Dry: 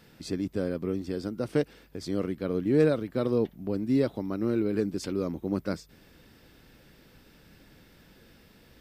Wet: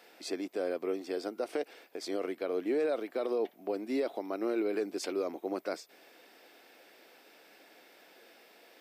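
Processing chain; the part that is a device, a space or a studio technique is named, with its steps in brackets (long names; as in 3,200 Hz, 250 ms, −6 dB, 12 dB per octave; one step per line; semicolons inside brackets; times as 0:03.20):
laptop speaker (high-pass filter 340 Hz 24 dB per octave; parametric band 710 Hz +9 dB 0.4 octaves; parametric band 2,300 Hz +4.5 dB 0.37 octaves; brickwall limiter −23.5 dBFS, peak gain reduction 10 dB)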